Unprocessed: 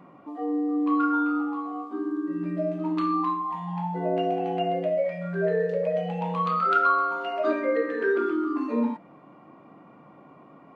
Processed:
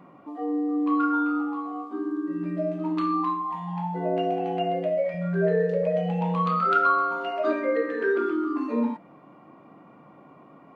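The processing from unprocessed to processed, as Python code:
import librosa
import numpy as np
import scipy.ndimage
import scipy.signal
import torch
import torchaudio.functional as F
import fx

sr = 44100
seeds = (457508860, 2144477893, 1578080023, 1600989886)

y = fx.low_shelf(x, sr, hz=220.0, db=8.5, at=(5.14, 7.31))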